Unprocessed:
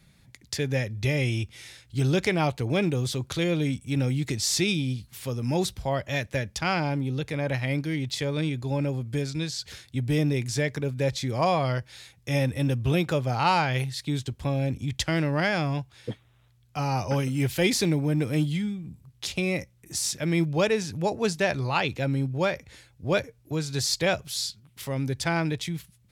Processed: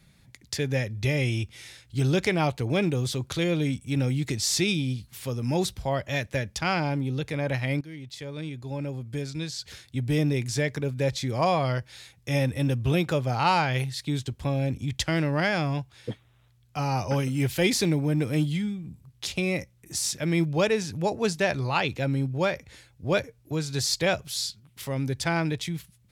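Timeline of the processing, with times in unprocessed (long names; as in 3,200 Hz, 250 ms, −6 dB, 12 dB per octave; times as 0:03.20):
0:07.81–0:10.21: fade in, from −13.5 dB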